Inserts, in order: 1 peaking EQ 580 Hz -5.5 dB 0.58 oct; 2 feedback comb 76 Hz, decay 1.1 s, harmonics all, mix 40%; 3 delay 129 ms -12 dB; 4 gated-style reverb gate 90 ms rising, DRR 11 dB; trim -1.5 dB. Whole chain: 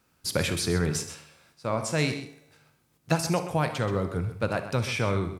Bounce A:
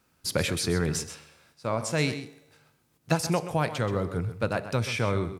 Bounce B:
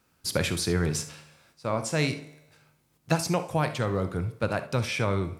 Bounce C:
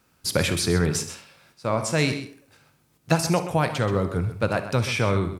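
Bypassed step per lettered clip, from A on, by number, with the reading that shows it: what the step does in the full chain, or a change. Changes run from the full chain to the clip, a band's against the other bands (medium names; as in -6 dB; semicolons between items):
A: 4, echo-to-direct -8.5 dB to -12.0 dB; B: 3, echo-to-direct -8.5 dB to -11.0 dB; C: 2, loudness change +4.0 LU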